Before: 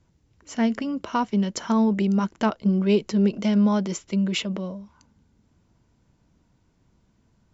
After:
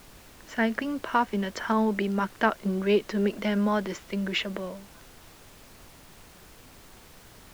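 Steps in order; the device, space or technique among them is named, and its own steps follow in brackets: horn gramophone (band-pass 290–3800 Hz; peaking EQ 1.7 kHz +9.5 dB 0.48 oct; wow and flutter 23 cents; pink noise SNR 21 dB)

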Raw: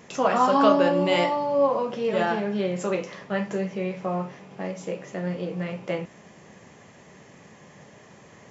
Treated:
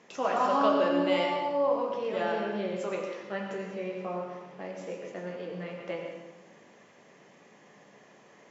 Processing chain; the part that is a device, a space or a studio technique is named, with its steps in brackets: supermarket ceiling speaker (band-pass 240–6200 Hz; reverberation RT60 1.1 s, pre-delay 80 ms, DRR 3 dB); trim -7 dB

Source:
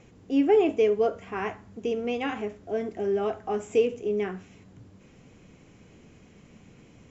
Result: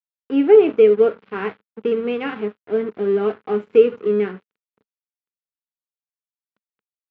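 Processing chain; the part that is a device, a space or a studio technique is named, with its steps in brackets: blown loudspeaker (crossover distortion -42 dBFS; cabinet simulation 140–3500 Hz, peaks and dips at 210 Hz +6 dB, 440 Hz +7 dB, 690 Hz -7 dB, 1.4 kHz +5 dB); trim +4.5 dB

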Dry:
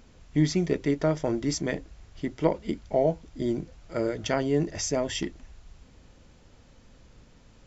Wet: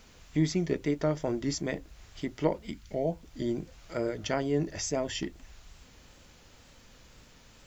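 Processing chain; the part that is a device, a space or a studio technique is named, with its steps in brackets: noise-reduction cassette on a plain deck (tape noise reduction on one side only encoder only; wow and flutter; white noise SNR 41 dB); 2.65–3.11 s: peaking EQ 360 Hz -> 1.4 kHz -14.5 dB 1 oct; trim -3.5 dB

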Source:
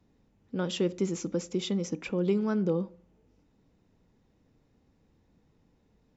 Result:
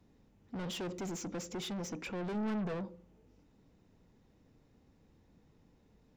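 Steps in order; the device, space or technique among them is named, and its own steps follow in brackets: saturation between pre-emphasis and de-emphasis (treble shelf 6.3 kHz +7.5 dB; saturation -37.5 dBFS, distortion -5 dB; treble shelf 6.3 kHz -7.5 dB); 2.34–2.74 s: comb 4.6 ms, depth 52%; trim +1 dB

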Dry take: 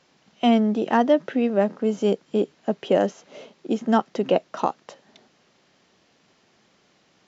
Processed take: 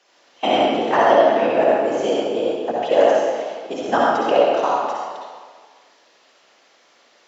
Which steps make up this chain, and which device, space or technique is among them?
whispering ghost (whisper effect; high-pass 510 Hz 12 dB/octave; reverberation RT60 1.7 s, pre-delay 53 ms, DRR -4.5 dB); trim +2.5 dB

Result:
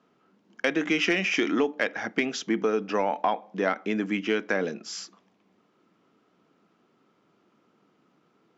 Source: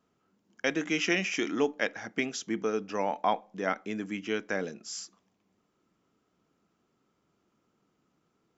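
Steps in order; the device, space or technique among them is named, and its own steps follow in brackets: AM radio (band-pass 170–4200 Hz; compression 5:1, threshold -29 dBFS, peak gain reduction 8 dB; saturation -19.5 dBFS, distortion -24 dB); trim +9 dB

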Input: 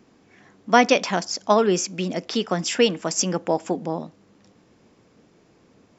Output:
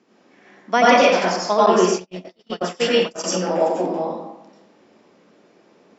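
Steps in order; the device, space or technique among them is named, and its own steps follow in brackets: supermarket ceiling speaker (band-pass 250–6600 Hz; reverberation RT60 0.90 s, pre-delay 85 ms, DRR -7 dB); 1.66–3.24 s: gate -16 dBFS, range -44 dB; trim -3 dB

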